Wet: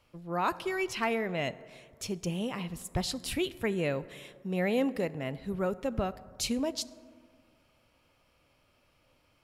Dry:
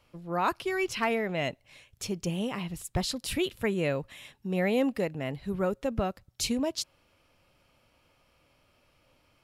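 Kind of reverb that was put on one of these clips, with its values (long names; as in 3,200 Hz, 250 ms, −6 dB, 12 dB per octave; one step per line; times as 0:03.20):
dense smooth reverb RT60 2.1 s, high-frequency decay 0.35×, DRR 16 dB
level −2 dB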